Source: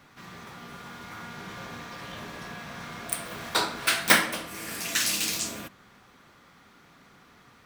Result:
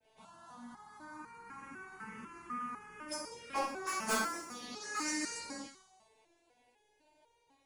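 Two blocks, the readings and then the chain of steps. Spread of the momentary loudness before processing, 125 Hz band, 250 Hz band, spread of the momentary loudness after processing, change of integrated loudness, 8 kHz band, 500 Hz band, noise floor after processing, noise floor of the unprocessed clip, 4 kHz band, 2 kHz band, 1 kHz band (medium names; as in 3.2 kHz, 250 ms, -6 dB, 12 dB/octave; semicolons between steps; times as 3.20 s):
22 LU, -17.0 dB, -6.0 dB, 18 LU, -12.0 dB, -11.5 dB, -7.5 dB, -73 dBFS, -57 dBFS, -15.5 dB, -12.5 dB, -6.0 dB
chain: frequency axis rescaled in octaves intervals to 84%; expander -54 dBFS; treble shelf 6.9 kHz +8 dB; touch-sensitive phaser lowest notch 190 Hz, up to 3.4 kHz, full sweep at -30.5 dBFS; in parallel at -3.5 dB: saturation -21 dBFS, distortion -10 dB; on the sum: treble shelf 2.6 kHz -8.5 dB; hard clipper -23.5 dBFS, distortion -9 dB; on a send: feedback echo behind a high-pass 64 ms, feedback 67%, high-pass 3.7 kHz, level -8 dB; on the sum: resonator arpeggio 4 Hz 220–470 Hz; trim +8 dB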